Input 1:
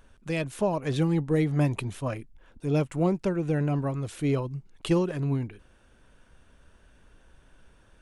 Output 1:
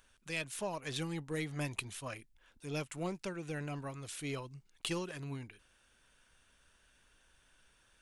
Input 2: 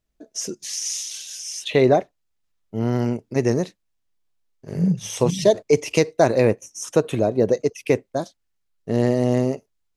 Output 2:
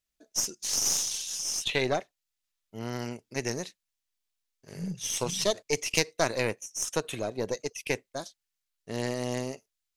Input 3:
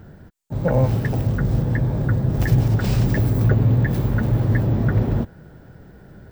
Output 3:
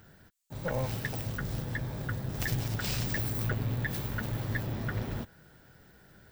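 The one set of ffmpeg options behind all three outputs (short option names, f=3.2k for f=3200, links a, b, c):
-af "tiltshelf=f=1.2k:g=-8.5,aeval=exprs='1.06*(cos(1*acos(clip(val(0)/1.06,-1,1)))-cos(1*PI/2))+0.211*(cos(4*acos(clip(val(0)/1.06,-1,1)))-cos(4*PI/2))':c=same,volume=-7.5dB"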